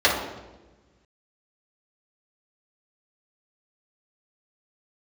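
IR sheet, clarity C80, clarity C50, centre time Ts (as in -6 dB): 6.5 dB, 3.5 dB, 45 ms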